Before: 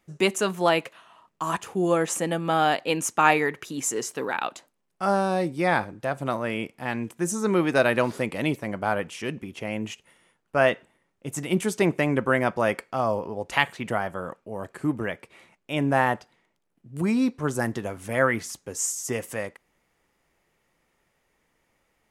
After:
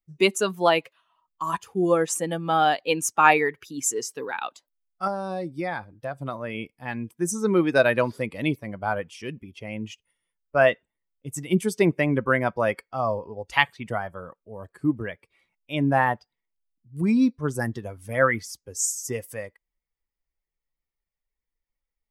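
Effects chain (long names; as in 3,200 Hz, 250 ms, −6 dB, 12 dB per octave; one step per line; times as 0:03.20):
spectral dynamics exaggerated over time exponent 1.5
0:05.07–0:06.55: downward compressor 4 to 1, threshold −31 dBFS, peak gain reduction 9 dB
level +4 dB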